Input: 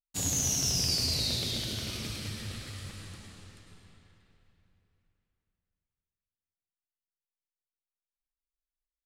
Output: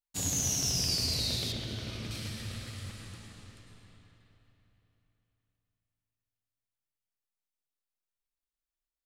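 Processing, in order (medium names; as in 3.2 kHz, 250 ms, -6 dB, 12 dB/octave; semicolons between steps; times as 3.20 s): 1.52–2.11 s: low-pass 2.6 kHz 6 dB/octave; spring tank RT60 3.6 s, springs 32/53 ms, chirp 70 ms, DRR 10.5 dB; trim -1.5 dB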